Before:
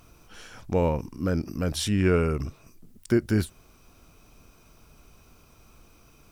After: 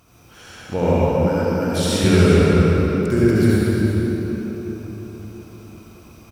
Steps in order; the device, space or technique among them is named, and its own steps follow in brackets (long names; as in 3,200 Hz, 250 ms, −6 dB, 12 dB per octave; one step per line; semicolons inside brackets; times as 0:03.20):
cave (single-tap delay 362 ms −11 dB; convolution reverb RT60 4.2 s, pre-delay 61 ms, DRR −9.5 dB)
high-pass filter 59 Hz
0:01.27–0:02.04: low-shelf EQ 150 Hz −10.5 dB